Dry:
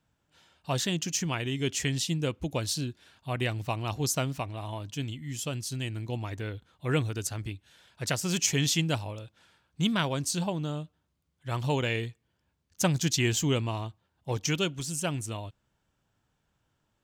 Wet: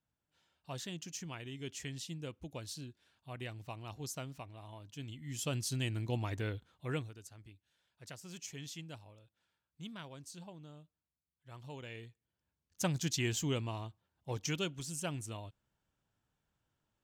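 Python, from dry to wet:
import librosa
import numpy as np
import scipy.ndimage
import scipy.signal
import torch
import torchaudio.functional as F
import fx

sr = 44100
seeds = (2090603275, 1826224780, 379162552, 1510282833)

y = fx.gain(x, sr, db=fx.line((4.88, -14.0), (5.54, -2.0), (6.52, -2.0), (6.96, -10.5), (7.18, -20.0), (11.71, -20.0), (12.87, -8.0)))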